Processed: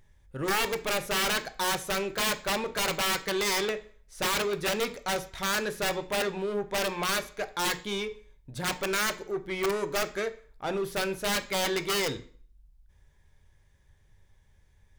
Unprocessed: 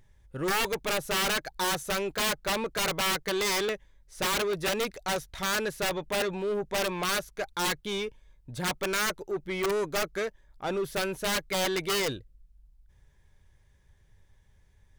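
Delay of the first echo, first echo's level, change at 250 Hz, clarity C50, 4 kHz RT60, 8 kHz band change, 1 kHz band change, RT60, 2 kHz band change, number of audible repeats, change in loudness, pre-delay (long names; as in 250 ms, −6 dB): no echo audible, no echo audible, 0.0 dB, 16.0 dB, 0.40 s, 0.0 dB, +0.5 dB, 0.50 s, +0.5 dB, no echo audible, 0.0 dB, 14 ms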